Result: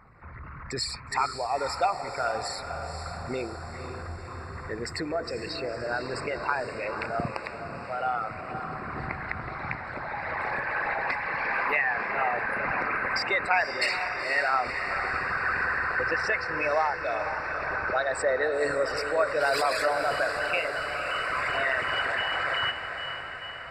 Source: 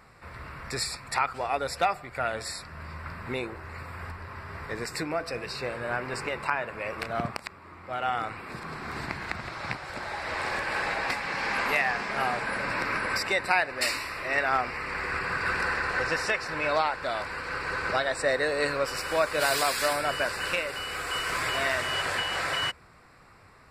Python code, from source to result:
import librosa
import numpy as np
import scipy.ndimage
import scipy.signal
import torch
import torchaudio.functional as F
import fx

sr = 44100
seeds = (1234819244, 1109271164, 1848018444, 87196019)

y = fx.envelope_sharpen(x, sr, power=2.0)
y = fx.echo_diffused(y, sr, ms=500, feedback_pct=62, wet_db=-8)